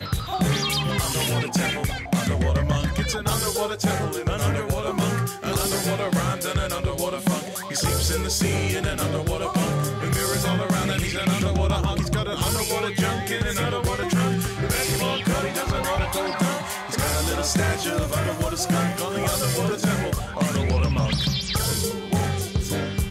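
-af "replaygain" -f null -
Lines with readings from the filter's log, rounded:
track_gain = +6.2 dB
track_peak = 0.274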